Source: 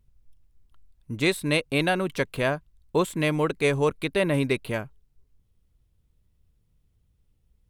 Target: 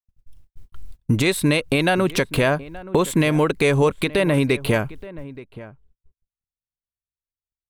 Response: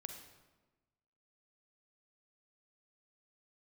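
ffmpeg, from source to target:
-filter_complex "[0:a]agate=range=0.00126:threshold=0.00224:ratio=16:detection=peak,acompressor=threshold=0.01:ratio=2.5,alimiter=level_in=1.78:limit=0.0631:level=0:latency=1:release=145,volume=0.562,dynaudnorm=f=320:g=3:m=5.31,asplit=2[s0][s1];[s1]adelay=874.6,volume=0.141,highshelf=f=4000:g=-19.7[s2];[s0][s2]amix=inputs=2:normalize=0,volume=2.24"

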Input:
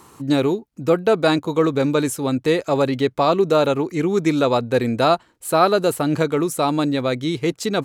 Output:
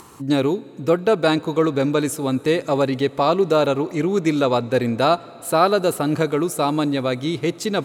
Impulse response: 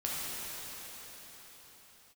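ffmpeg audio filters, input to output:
-filter_complex "[0:a]acompressor=mode=upward:threshold=0.0112:ratio=2.5,asplit=2[s0][s1];[1:a]atrim=start_sample=2205,asetrate=52920,aresample=44100[s2];[s1][s2]afir=irnorm=-1:irlink=0,volume=0.0668[s3];[s0][s3]amix=inputs=2:normalize=0,volume=0.891"

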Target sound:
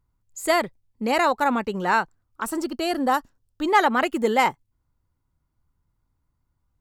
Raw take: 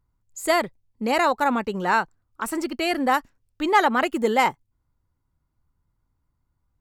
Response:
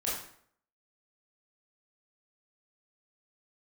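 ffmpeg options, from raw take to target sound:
-filter_complex "[0:a]asettb=1/sr,asplit=3[s0][s1][s2];[s0]atrim=end=2.454[s3];[s1]atrim=start=2.45:end=3.68,asetpts=PTS-STARTPTS,afade=t=in:d=0.004:c=qsin,afade=t=out:st=1.226:d=0.004:c=qsin,equalizer=f=2200:w=2.6:g=-10[s4];[s2]atrim=start=3.676[s5];[s3][s4]acrossfade=d=0.004:c1=hsin:c2=qsin[s6];[s6][s5]acrossfade=d=0.004:c1=qsin:c2=hsin"

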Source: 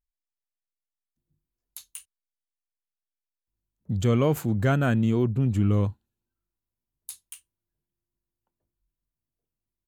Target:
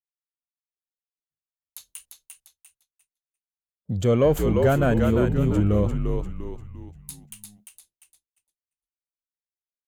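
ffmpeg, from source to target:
-filter_complex "[0:a]equalizer=f=550:t=o:w=0.8:g=8.5,asplit=2[s0][s1];[s1]asplit=5[s2][s3][s4][s5][s6];[s2]adelay=347,afreqshift=-62,volume=0.596[s7];[s3]adelay=694,afreqshift=-124,volume=0.257[s8];[s4]adelay=1041,afreqshift=-186,volume=0.11[s9];[s5]adelay=1388,afreqshift=-248,volume=0.0473[s10];[s6]adelay=1735,afreqshift=-310,volume=0.0204[s11];[s7][s8][s9][s10][s11]amix=inputs=5:normalize=0[s12];[s0][s12]amix=inputs=2:normalize=0,acontrast=41,agate=range=0.0224:threshold=0.00398:ratio=3:detection=peak,volume=0.531"

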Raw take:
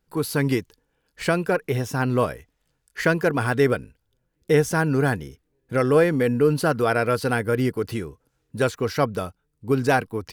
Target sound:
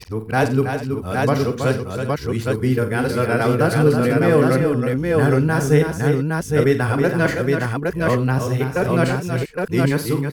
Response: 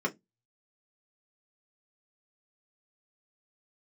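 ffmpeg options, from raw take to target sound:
-filter_complex "[0:a]areverse,lowshelf=f=180:g=8,asplit=2[s0][s1];[s1]aecho=0:1:46|92|324|346|394|815:0.316|0.15|0.447|0.106|0.178|0.708[s2];[s0][s2]amix=inputs=2:normalize=0"

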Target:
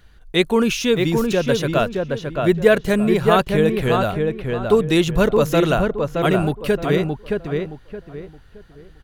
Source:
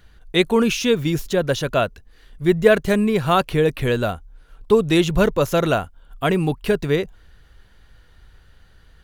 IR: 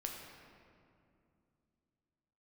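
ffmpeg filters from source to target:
-filter_complex "[0:a]asplit=2[s0][s1];[s1]adelay=620,lowpass=f=2100:p=1,volume=0.668,asplit=2[s2][s3];[s3]adelay=620,lowpass=f=2100:p=1,volume=0.3,asplit=2[s4][s5];[s5]adelay=620,lowpass=f=2100:p=1,volume=0.3,asplit=2[s6][s7];[s7]adelay=620,lowpass=f=2100:p=1,volume=0.3[s8];[s0][s2][s4][s6][s8]amix=inputs=5:normalize=0"

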